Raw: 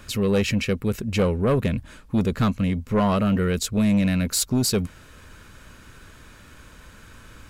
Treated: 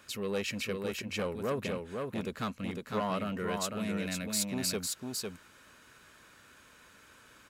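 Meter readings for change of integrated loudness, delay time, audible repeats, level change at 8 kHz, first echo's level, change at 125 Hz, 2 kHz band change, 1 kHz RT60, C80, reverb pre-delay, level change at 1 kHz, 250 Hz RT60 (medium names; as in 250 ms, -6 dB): -12.0 dB, 503 ms, 1, -7.0 dB, -4.0 dB, -17.5 dB, -7.0 dB, no reverb, no reverb, no reverb, -8.0 dB, no reverb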